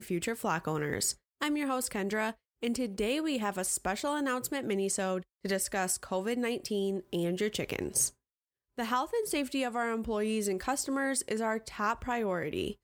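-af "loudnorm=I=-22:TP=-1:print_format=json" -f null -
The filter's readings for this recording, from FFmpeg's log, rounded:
"input_i" : "-32.4",
"input_tp" : "-15.8",
"input_lra" : "0.7",
"input_thresh" : "-42.4",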